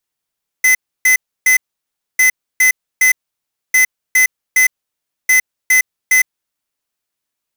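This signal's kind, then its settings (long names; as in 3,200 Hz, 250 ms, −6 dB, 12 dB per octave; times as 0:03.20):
beeps in groups square 2,030 Hz, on 0.11 s, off 0.30 s, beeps 3, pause 0.62 s, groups 4, −10 dBFS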